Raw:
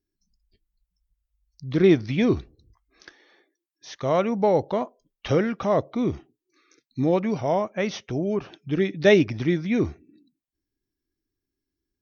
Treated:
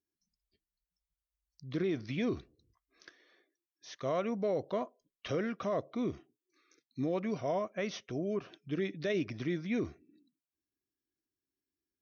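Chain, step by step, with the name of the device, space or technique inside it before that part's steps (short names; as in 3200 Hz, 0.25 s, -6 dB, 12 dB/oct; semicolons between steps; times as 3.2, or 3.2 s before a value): PA system with an anti-feedback notch (HPF 160 Hz 6 dB/oct; Butterworth band-stop 850 Hz, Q 5.4; limiter -16.5 dBFS, peak gain reduction 11.5 dB); gain -8 dB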